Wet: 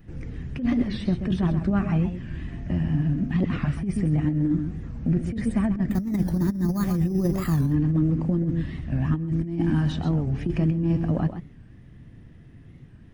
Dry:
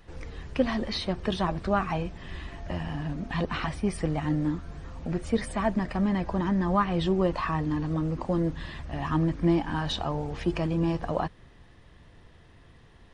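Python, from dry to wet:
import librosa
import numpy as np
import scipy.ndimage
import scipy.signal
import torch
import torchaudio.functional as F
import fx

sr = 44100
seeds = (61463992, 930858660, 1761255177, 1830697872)

y = fx.resample_bad(x, sr, factor=8, down='filtered', up='hold', at=(5.9, 7.62))
y = fx.graphic_eq_10(y, sr, hz=(125, 250, 500, 1000, 4000, 8000), db=(9, 8, -5, -10, -10, -6))
y = y + 10.0 ** (-9.5 / 20.0) * np.pad(y, (int(130 * sr / 1000.0), 0))[:len(y)]
y = fx.over_compress(y, sr, threshold_db=-21.0, ratio=-0.5)
y = fx.high_shelf(y, sr, hz=5700.0, db=10.5, at=(9.27, 9.9))
y = fx.record_warp(y, sr, rpm=45.0, depth_cents=160.0)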